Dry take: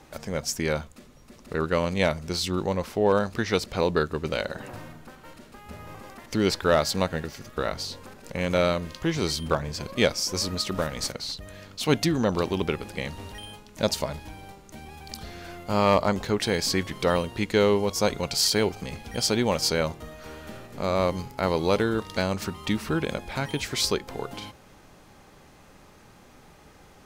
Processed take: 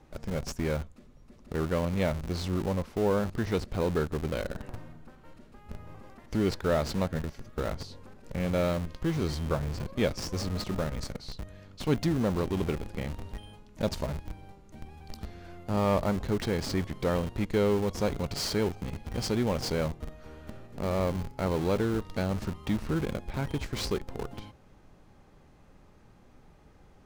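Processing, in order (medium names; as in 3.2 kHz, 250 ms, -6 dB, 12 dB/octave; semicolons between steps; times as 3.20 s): tilt EQ -2 dB/octave; in parallel at -4 dB: Schmitt trigger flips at -28 dBFS; on the sum: trim -9 dB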